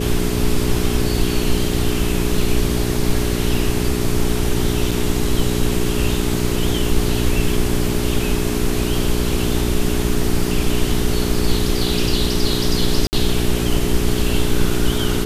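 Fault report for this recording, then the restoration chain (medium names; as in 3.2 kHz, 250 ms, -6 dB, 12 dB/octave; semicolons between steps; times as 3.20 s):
hum 60 Hz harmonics 7 -22 dBFS
4.91–4.92 s: dropout 5.2 ms
13.07–13.13 s: dropout 59 ms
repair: de-hum 60 Hz, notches 7; interpolate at 4.91 s, 5.2 ms; interpolate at 13.07 s, 59 ms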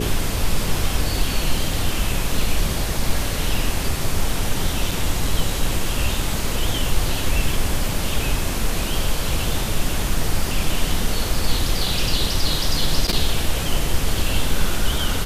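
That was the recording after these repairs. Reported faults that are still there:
nothing left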